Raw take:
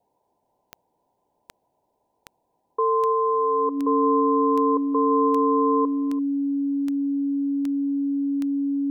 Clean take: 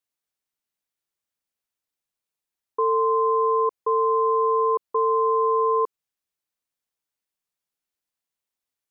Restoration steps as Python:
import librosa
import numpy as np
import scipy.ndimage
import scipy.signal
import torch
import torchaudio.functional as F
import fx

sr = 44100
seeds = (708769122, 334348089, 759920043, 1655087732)

y = fx.fix_declick_ar(x, sr, threshold=10.0)
y = fx.notch(y, sr, hz=280.0, q=30.0)
y = fx.noise_reduce(y, sr, print_start_s=1.68, print_end_s=2.18, reduce_db=15.0)
y = fx.fix_echo_inverse(y, sr, delay_ms=339, level_db=-19.5)